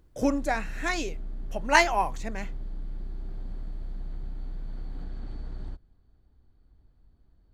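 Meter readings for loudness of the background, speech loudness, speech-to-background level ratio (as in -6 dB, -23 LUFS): -41.5 LUFS, -26.0 LUFS, 15.5 dB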